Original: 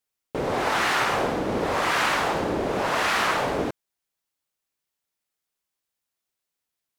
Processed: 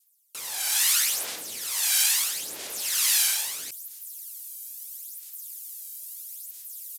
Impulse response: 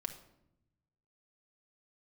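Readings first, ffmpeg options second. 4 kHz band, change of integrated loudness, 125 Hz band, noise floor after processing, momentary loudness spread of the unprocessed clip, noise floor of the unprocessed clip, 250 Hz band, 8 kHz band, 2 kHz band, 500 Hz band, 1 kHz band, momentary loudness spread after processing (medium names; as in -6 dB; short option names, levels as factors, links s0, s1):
+4.0 dB, +1.0 dB, under -25 dB, -56 dBFS, 7 LU, -85 dBFS, under -25 dB, +15.0 dB, -8.5 dB, -24.0 dB, -20.0 dB, 18 LU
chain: -filter_complex "[0:a]adynamicequalizer=threshold=0.0141:dfrequency=1100:dqfactor=0.9:tfrequency=1100:tqfactor=0.9:attack=5:release=100:ratio=0.375:range=3:mode=cutabove:tftype=bell,acrossover=split=120|4500[s0][s1][s2];[s0]acontrast=67[s3];[s3][s1][s2]amix=inputs=3:normalize=0,aresample=32000,aresample=44100,areverse,acompressor=mode=upward:threshold=0.0158:ratio=2.5,areverse,aphaser=in_gain=1:out_gain=1:delay=1.3:decay=0.57:speed=0.76:type=sinusoidal,crystalizer=i=6:c=0,aderivative,volume=0.708"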